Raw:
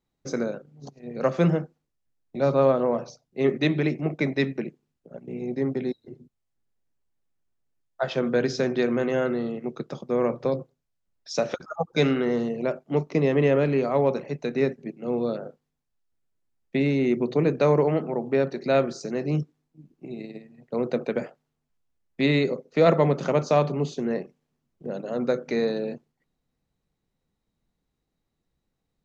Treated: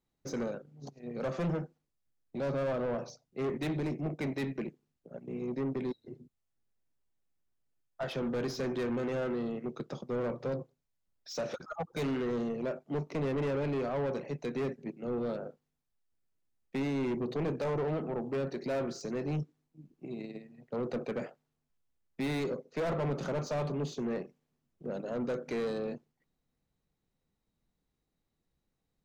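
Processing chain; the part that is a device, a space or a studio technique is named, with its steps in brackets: saturation between pre-emphasis and de-emphasis (treble shelf 2 kHz +12 dB; saturation -25 dBFS, distortion -6 dB; treble shelf 2 kHz -12 dB); 3.76–4.21 s: peaking EQ 2.5 kHz -5.5 dB 1.7 oct; trim -3.5 dB

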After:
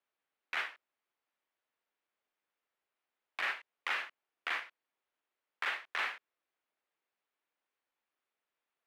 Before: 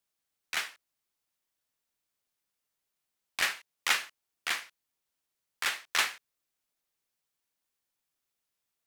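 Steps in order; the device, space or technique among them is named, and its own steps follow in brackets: DJ mixer with the lows and highs turned down (three-band isolator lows -18 dB, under 270 Hz, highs -22 dB, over 3 kHz; peak limiter -26.5 dBFS, peak gain reduction 11 dB); trim +3 dB

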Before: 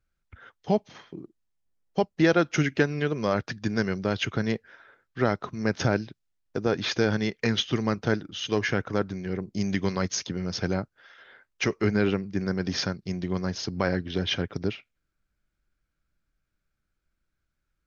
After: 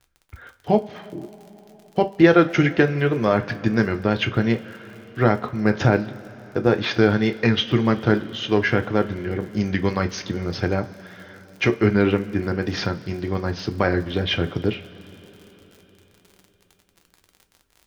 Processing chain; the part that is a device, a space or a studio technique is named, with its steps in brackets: lo-fi chain (low-pass 3.4 kHz 12 dB/octave; wow and flutter; crackle 56 per s -42 dBFS); two-slope reverb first 0.23 s, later 4.6 s, from -22 dB, DRR 6.5 dB; trim +5.5 dB

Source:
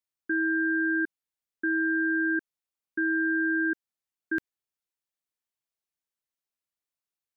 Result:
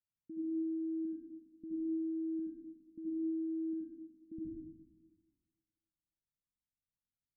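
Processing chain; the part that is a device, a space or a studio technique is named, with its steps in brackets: club heard from the street (peak limiter -25 dBFS, peak gain reduction 5 dB; low-pass 220 Hz 24 dB/octave; reverberation RT60 1.4 s, pre-delay 64 ms, DRR -3.5 dB); trim +2 dB

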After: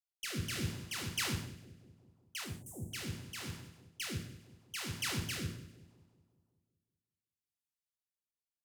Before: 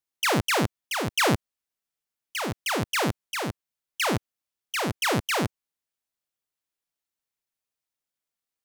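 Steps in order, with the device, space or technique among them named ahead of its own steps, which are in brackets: amplifier tone stack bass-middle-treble 6-0-2; two-band feedback delay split 870 Hz, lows 187 ms, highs 99 ms, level -12 dB; 2.44–2.93 s: elliptic band-stop 740–7900 Hz, stop band 40 dB; gated-style reverb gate 200 ms falling, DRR 1.5 dB; overdriven rotary cabinet (valve stage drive 22 dB, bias 0.55; rotary cabinet horn 0.75 Hz); trim +7.5 dB

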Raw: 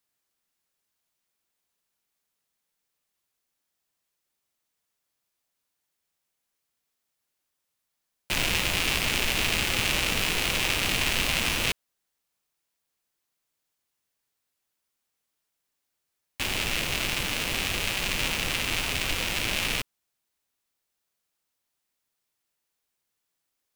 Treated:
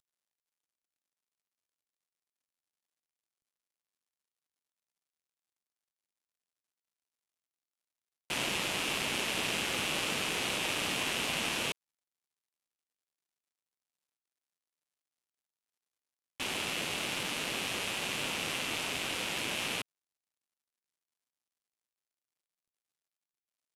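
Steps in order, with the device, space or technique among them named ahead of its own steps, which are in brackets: early wireless headset (high-pass 180 Hz 12 dB/octave; CVSD coder 64 kbps); trim -3.5 dB

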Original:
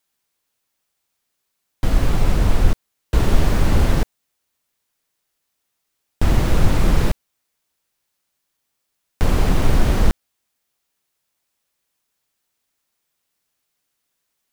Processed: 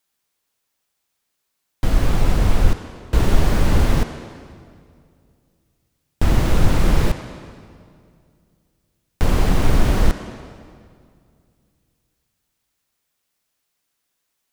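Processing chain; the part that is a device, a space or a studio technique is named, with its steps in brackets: filtered reverb send (on a send: high-pass 260 Hz 6 dB/octave + low-pass 8.6 kHz + reverberation RT60 2.2 s, pre-delay 46 ms, DRR 8.5 dB)

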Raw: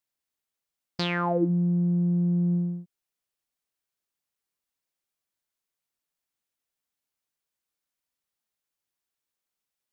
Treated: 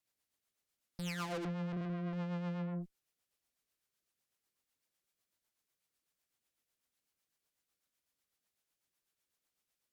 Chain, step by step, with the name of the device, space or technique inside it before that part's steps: 1.68–2.13 s: flutter echo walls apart 7.3 m, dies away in 0.9 s; overdriven rotary cabinet (valve stage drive 43 dB, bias 0.55; rotary cabinet horn 8 Hz); trim +6.5 dB

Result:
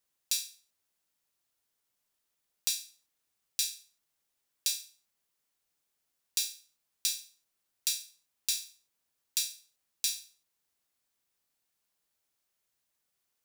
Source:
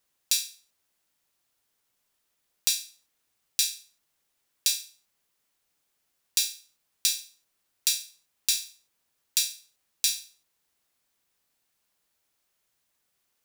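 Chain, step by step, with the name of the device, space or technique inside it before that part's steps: exciter from parts (in parallel at -13.5 dB: high-pass 3.2 kHz + saturation -23 dBFS, distortion -8 dB); on the sum: trim -6.5 dB

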